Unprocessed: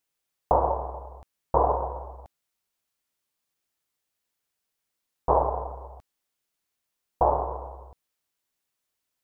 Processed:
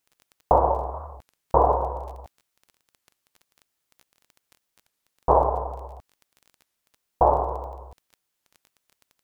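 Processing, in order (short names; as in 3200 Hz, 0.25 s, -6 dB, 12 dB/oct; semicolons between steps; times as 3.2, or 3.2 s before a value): crackle 16/s -40 dBFS; record warp 33 1/3 rpm, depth 250 cents; gain +3.5 dB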